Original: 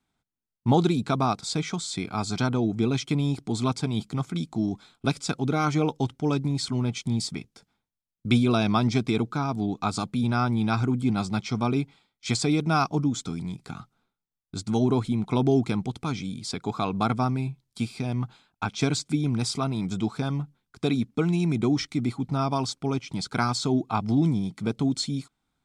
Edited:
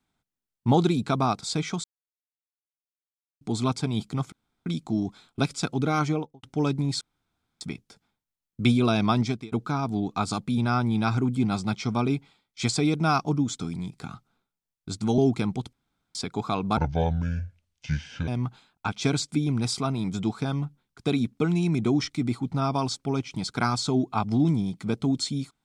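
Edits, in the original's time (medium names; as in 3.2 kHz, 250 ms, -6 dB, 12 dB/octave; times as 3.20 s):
1.84–3.41 s: mute
4.32 s: insert room tone 0.34 s
5.65–6.09 s: studio fade out
6.67–7.27 s: room tone
8.85–9.18 s: fade out
14.84–15.48 s: delete
16.03–16.45 s: room tone
17.07–18.05 s: speed 65%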